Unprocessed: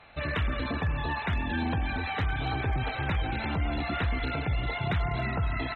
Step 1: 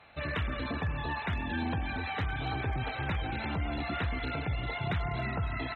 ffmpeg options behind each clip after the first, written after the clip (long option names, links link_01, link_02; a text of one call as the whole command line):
ffmpeg -i in.wav -af "highpass=53,volume=-3dB" out.wav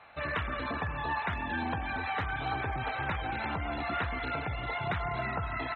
ffmpeg -i in.wav -af "equalizer=frequency=1100:width=0.56:gain=9.5,volume=-4.5dB" out.wav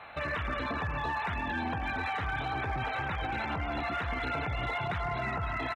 ffmpeg -i in.wav -af "aecho=1:1:905:0.0841,alimiter=level_in=7.5dB:limit=-24dB:level=0:latency=1:release=124,volume=-7.5dB,asoftclip=type=hard:threshold=-33dB,volume=7dB" out.wav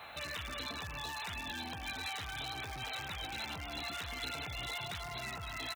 ffmpeg -i in.wav -filter_complex "[0:a]acrossover=split=3100[link_01][link_02];[link_01]alimiter=level_in=11dB:limit=-24dB:level=0:latency=1,volume=-11dB[link_03];[link_02]crystalizer=i=6.5:c=0[link_04];[link_03][link_04]amix=inputs=2:normalize=0,volume=-2.5dB" out.wav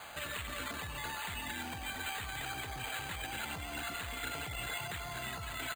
ffmpeg -i in.wav -af "acrusher=samples=8:mix=1:aa=0.000001,volume=1dB" out.wav